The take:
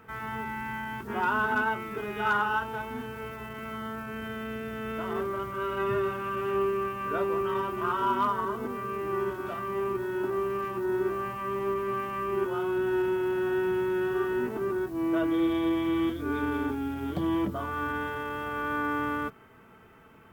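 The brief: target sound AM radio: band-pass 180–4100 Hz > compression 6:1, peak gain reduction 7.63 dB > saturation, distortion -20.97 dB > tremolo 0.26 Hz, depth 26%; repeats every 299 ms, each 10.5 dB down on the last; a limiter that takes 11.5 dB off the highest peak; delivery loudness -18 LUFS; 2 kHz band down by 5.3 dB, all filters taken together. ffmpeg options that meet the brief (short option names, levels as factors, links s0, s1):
-af "equalizer=f=2000:t=o:g=-8.5,alimiter=level_in=1.78:limit=0.0631:level=0:latency=1,volume=0.562,highpass=180,lowpass=4100,aecho=1:1:299|598|897:0.299|0.0896|0.0269,acompressor=threshold=0.0126:ratio=6,asoftclip=threshold=0.0178,tremolo=f=0.26:d=0.26,volume=20"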